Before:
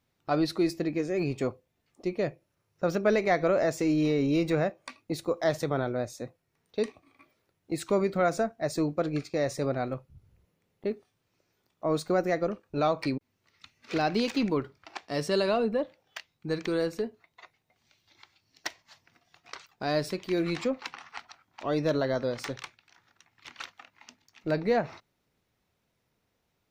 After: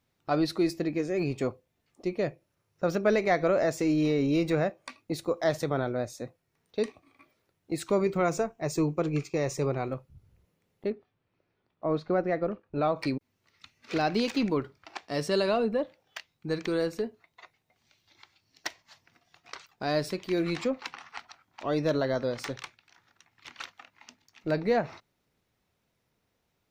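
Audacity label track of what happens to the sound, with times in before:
8.060000	9.890000	EQ curve with evenly spaced ripples crests per octave 0.73, crest to trough 8 dB
10.900000	12.960000	high-frequency loss of the air 290 metres

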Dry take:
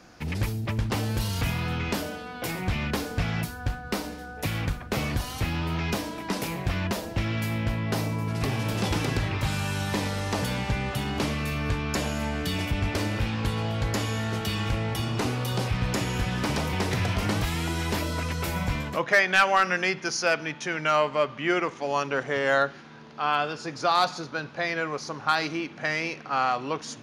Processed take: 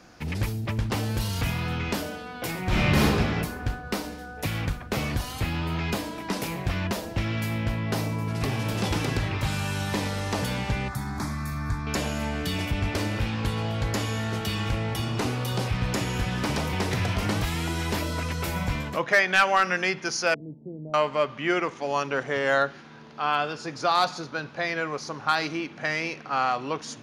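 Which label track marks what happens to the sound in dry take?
2.640000	3.040000	thrown reverb, RT60 1.7 s, DRR −8 dB
5.320000	6.140000	notch filter 5,700 Hz
10.880000	11.870000	phaser with its sweep stopped centre 1,200 Hz, stages 4
20.340000	20.940000	Gaussian smoothing sigma 20 samples

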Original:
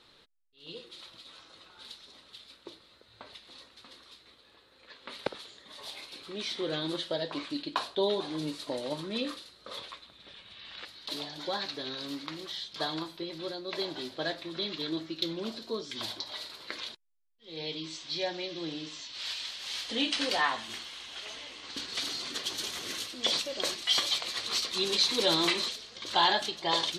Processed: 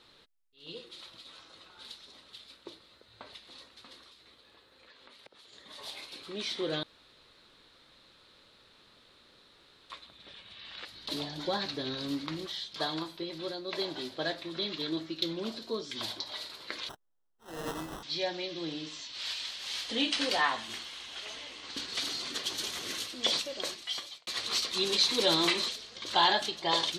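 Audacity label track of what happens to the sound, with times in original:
4.080000	5.530000	downward compressor, threshold −53 dBFS
6.830000	9.900000	fill with room tone
10.920000	12.470000	low-shelf EQ 260 Hz +10.5 dB
16.890000	18.030000	sample-rate reduction 2,300 Hz
23.270000	24.270000	fade out

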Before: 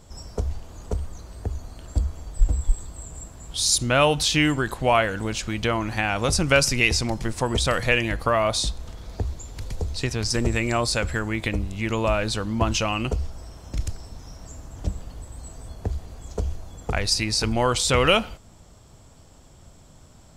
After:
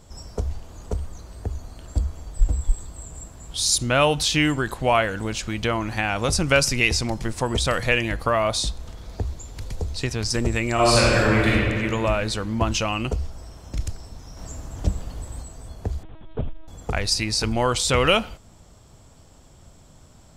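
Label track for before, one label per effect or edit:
10.740000	11.510000	thrown reverb, RT60 2.2 s, DRR −7 dB
14.370000	15.430000	clip gain +4.5 dB
16.030000	16.680000	linear-prediction vocoder at 8 kHz pitch kept

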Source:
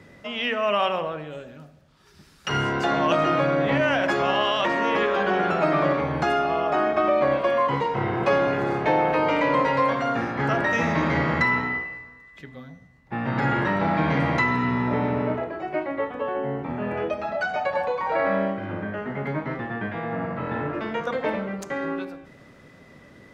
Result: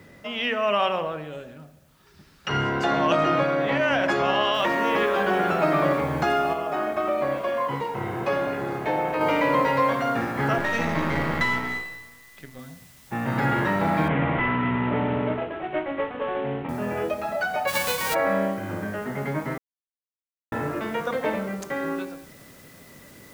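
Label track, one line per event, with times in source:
1.530000	2.810000	high-frequency loss of the air 79 metres
3.430000	3.910000	low-shelf EQ 220 Hz −8 dB
4.540000	4.540000	noise floor change −67 dB −53 dB
6.530000	9.210000	flanger 1 Hz, delay 3.2 ms, depth 8.6 ms, regen −76%
10.580000	12.590000	gain on one half-wave negative side −7 dB
14.080000	16.690000	variable-slope delta modulation 16 kbit/s
17.670000	18.130000	spectral envelope flattened exponent 0.3
19.580000	20.520000	silence

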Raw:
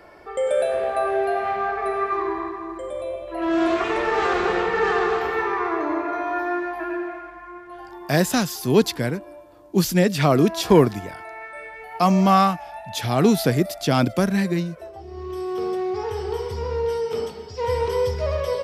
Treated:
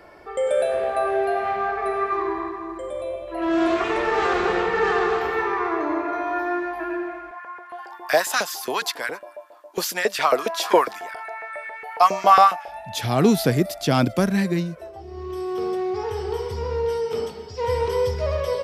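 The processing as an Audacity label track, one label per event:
7.310000	12.680000	auto-filter high-pass saw up 7.3 Hz 480–1,800 Hz

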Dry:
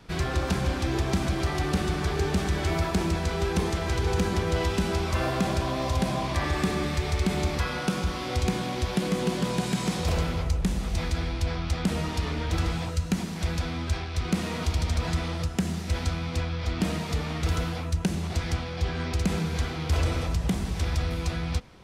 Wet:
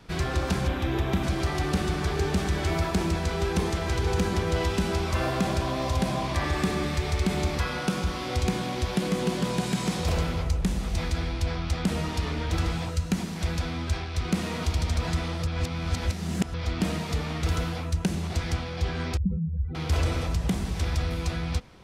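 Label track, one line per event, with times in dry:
0.680000	1.240000	gain on a spectral selection 4,000–11,000 Hz −9 dB
15.470000	16.540000	reverse
19.170000	19.750000	expanding power law on the bin magnitudes exponent 3.1

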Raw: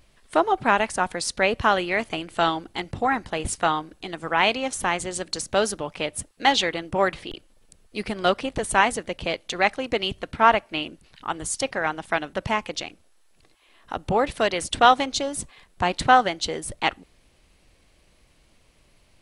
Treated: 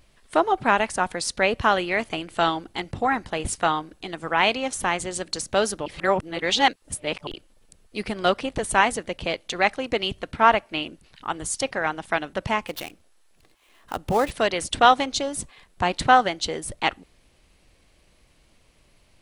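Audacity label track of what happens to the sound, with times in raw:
5.860000	7.270000	reverse
12.670000	14.310000	gap after every zero crossing of 0.062 ms

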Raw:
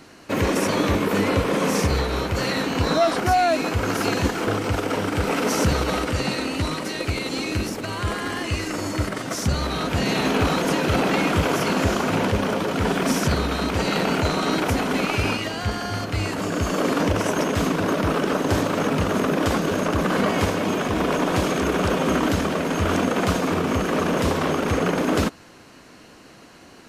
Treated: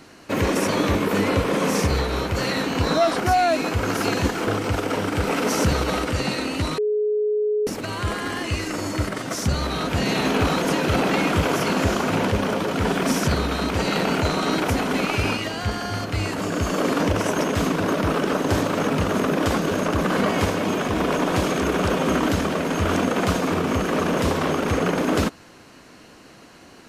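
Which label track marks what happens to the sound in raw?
6.780000	7.670000	beep over 422 Hz −18.5 dBFS

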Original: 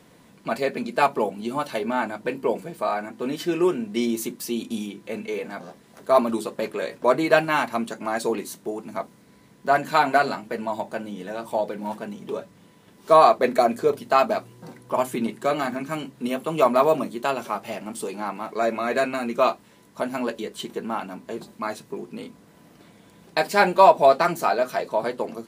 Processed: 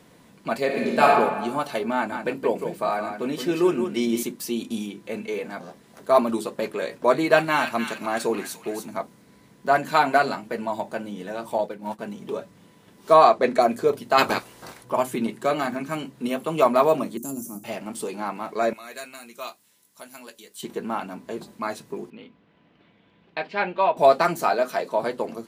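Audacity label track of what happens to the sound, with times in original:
0.650000	1.150000	thrown reverb, RT60 1.3 s, DRR −2.5 dB
1.950000	4.230000	single-tap delay 170 ms −7.5 dB
6.810000	8.890000	delay with a high-pass on its return 293 ms, feedback 40%, high-pass 1,900 Hz, level −4.5 dB
11.580000	11.990000	downward expander −28 dBFS
13.140000	13.620000	low-pass filter 8,600 Hz
14.170000	14.830000	ceiling on every frequency bin ceiling under each frame's peak by 21 dB
17.170000	17.640000	drawn EQ curve 150 Hz 0 dB, 300 Hz +7 dB, 440 Hz −15 dB, 2,000 Hz −28 dB, 4,000 Hz −22 dB, 6,200 Hz +7 dB, 14,000 Hz +14 dB
18.730000	20.630000	first-order pre-emphasis coefficient 0.9
22.100000	23.970000	transistor ladder low-pass 3,600 Hz, resonance 40%
24.530000	24.990000	Butterworth high-pass 160 Hz

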